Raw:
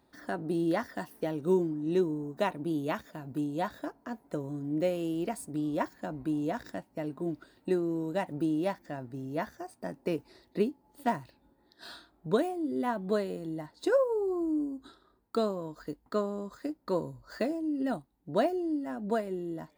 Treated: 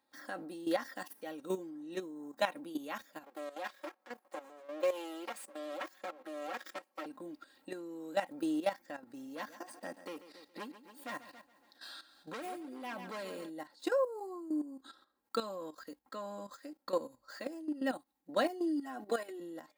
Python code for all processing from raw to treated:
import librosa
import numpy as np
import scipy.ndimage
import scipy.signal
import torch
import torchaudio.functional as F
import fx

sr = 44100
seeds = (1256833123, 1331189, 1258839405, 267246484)

y = fx.chain(x, sr, fx.lower_of_two(delay_ms=5.4),
    fx.highpass(hz=260.0, slope=24),
    fx.high_shelf(hz=2900.0, db=-3.0), at=(3.23, 7.06))
y = fx.chain(y, sr, fx.clip_hard(threshold_db=-28.0),
    fx.echo_crushed(ms=139, feedback_pct=55, bits=11, wet_db=-14.0), at=(9.12, 13.5))
y = fx.chain(y, sr, fx.comb(ms=2.7, depth=0.94),
    fx.band_squash(depth_pct=40), at=(18.44, 19.4))
y = y + 0.69 * np.pad(y, (int(3.7 * sr / 1000.0), 0))[:len(y)]
y = fx.level_steps(y, sr, step_db=13)
y = fx.highpass(y, sr, hz=960.0, slope=6)
y = y * 10.0 ** (4.0 / 20.0)